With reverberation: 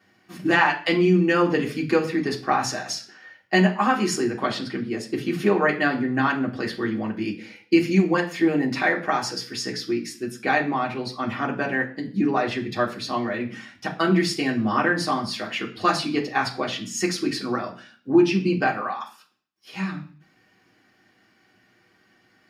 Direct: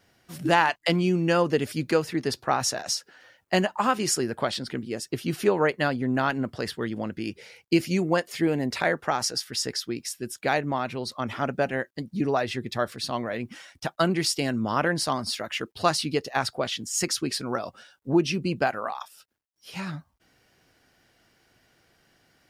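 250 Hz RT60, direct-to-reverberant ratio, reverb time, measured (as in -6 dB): 0.55 s, -4.0 dB, 0.45 s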